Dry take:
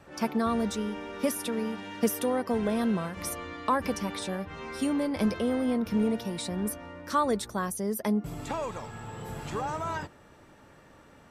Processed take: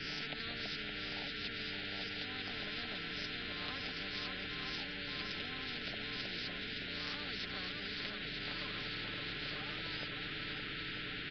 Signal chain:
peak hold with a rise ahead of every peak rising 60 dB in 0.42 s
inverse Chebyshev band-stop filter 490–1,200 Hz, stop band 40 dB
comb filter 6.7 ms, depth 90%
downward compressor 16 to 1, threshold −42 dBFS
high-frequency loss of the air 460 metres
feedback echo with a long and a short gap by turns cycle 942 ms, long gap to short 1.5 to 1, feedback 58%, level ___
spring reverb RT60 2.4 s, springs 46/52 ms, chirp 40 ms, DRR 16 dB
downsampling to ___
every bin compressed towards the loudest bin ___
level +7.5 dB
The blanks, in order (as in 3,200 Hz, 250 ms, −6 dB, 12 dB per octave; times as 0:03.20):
−8 dB, 11,025 Hz, 10 to 1